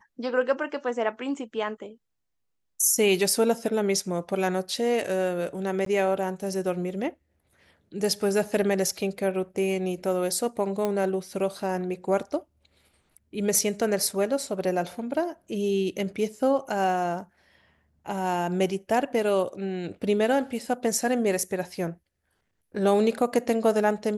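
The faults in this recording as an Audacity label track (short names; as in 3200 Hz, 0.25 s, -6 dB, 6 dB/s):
5.850000	5.860000	gap 13 ms
10.850000	10.850000	pop -14 dBFS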